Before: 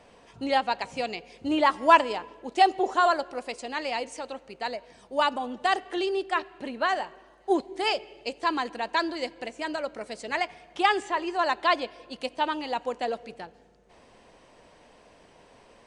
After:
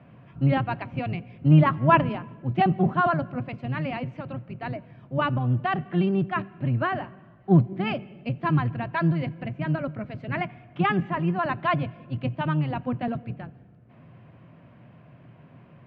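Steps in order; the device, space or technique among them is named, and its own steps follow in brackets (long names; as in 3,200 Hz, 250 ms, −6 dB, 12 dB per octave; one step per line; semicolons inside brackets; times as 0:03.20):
sub-octave bass pedal (sub-octave generator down 1 octave, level +4 dB; loudspeaker in its box 89–2,400 Hz, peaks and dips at 120 Hz +10 dB, 160 Hz +7 dB, 240 Hz +4 dB, 460 Hz −10 dB, 860 Hz −9 dB, 1,900 Hz −5 dB)
level +2 dB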